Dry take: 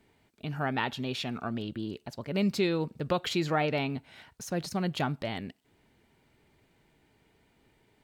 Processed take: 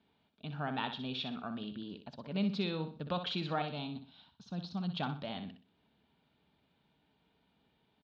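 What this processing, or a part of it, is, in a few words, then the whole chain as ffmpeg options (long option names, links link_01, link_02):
guitar cabinet: -filter_complex "[0:a]highpass=77,equalizer=frequency=110:width_type=q:width=4:gain=-10,equalizer=frequency=190:width_type=q:width=4:gain=3,equalizer=frequency=360:width_type=q:width=4:gain=-8,equalizer=frequency=520:width_type=q:width=4:gain=-3,equalizer=frequency=2000:width_type=q:width=4:gain=-10,equalizer=frequency=3600:width_type=q:width=4:gain=6,lowpass=frequency=4200:width=0.5412,lowpass=frequency=4200:width=1.3066,asettb=1/sr,asplit=3[link_01][link_02][link_03];[link_01]atrim=end=3.624[link_04];[link_02]atrim=start=3.62:end=4.96,asetpts=PTS-STARTPTS,afade=type=in:duration=0.004:curve=qsin,afade=type=out:start_time=1.336:duration=0.004:curve=qsin,equalizer=frequency=500:width_type=o:width=1:gain=-9,equalizer=frequency=2000:width_type=o:width=1:gain=-12,equalizer=frequency=4000:width_type=o:width=1:gain=5,equalizer=frequency=8000:width_type=o:width=1:gain=-8[link_05];[link_03]atrim=start=4.956[link_06];[link_04][link_05]acrossfade=duration=0.004:curve1=hsin:curve2=qsin[link_07];[link_07][link_06]acrossfade=duration=0.004:curve1=qsin:curve2=hsin,aecho=1:1:62|124|186|248:0.355|0.11|0.0341|0.0106,volume=-5.5dB"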